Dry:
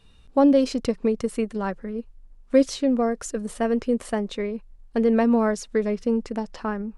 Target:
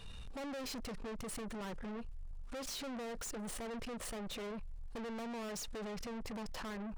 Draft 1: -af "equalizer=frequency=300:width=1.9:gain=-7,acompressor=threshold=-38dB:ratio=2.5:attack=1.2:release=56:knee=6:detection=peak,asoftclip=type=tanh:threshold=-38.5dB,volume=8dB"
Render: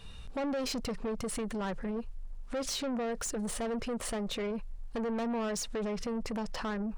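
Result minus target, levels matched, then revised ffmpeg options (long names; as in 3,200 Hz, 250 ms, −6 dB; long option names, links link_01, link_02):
soft clipping: distortion −6 dB
-af "equalizer=frequency=300:width=1.9:gain=-7,acompressor=threshold=-38dB:ratio=2.5:attack=1.2:release=56:knee=6:detection=peak,asoftclip=type=tanh:threshold=-49.5dB,volume=8dB"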